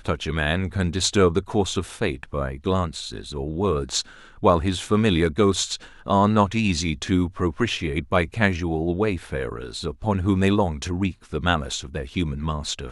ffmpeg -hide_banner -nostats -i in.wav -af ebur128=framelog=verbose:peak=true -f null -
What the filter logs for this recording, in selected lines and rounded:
Integrated loudness:
  I:         -23.5 LUFS
  Threshold: -33.5 LUFS
Loudness range:
  LRA:         3.3 LU
  Threshold: -43.4 LUFS
  LRA low:   -24.9 LUFS
  LRA high:  -21.6 LUFS
True peak:
  Peak:       -3.3 dBFS